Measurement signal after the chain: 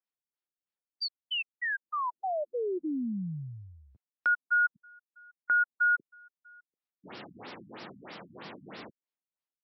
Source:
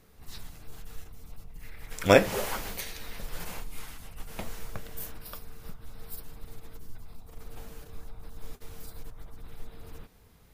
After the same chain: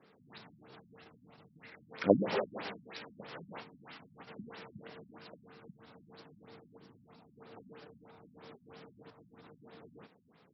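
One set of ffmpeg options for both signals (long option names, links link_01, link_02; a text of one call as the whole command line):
ffmpeg -i in.wav -filter_complex "[0:a]acrossover=split=150|1700|4700[link_01][link_02][link_03][link_04];[link_01]acrusher=bits=3:mix=0:aa=0.000001[link_05];[link_05][link_02][link_03][link_04]amix=inputs=4:normalize=0,afftfilt=real='re*lt(b*sr/1024,250*pow(5800/250,0.5+0.5*sin(2*PI*3.1*pts/sr)))':imag='im*lt(b*sr/1024,250*pow(5800/250,0.5+0.5*sin(2*PI*3.1*pts/sr)))':win_size=1024:overlap=0.75" out.wav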